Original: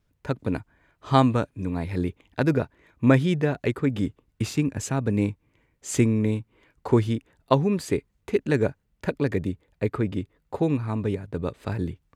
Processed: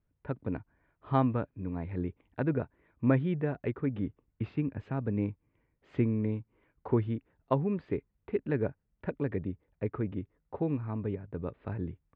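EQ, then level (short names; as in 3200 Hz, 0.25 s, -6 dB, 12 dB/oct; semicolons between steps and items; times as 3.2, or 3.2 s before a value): LPF 3200 Hz 12 dB/oct; air absorption 410 m; -7.0 dB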